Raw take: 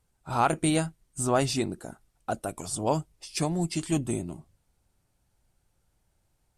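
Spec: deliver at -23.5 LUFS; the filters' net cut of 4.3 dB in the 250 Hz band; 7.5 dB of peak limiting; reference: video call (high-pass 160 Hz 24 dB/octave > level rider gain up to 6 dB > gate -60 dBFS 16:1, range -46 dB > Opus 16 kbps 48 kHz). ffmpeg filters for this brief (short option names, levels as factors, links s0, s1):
-af "equalizer=f=250:t=o:g=-5.5,alimiter=limit=0.119:level=0:latency=1,highpass=f=160:w=0.5412,highpass=f=160:w=1.3066,dynaudnorm=m=2,agate=range=0.00501:threshold=0.001:ratio=16,volume=3.16" -ar 48000 -c:a libopus -b:a 16k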